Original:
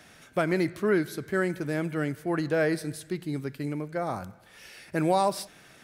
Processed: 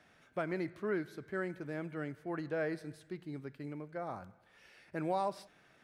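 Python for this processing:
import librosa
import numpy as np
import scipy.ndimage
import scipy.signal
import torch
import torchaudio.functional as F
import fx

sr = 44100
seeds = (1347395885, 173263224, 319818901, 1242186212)

y = fx.lowpass(x, sr, hz=1800.0, slope=6)
y = fx.low_shelf(y, sr, hz=480.0, db=-5.0)
y = y * 10.0 ** (-7.5 / 20.0)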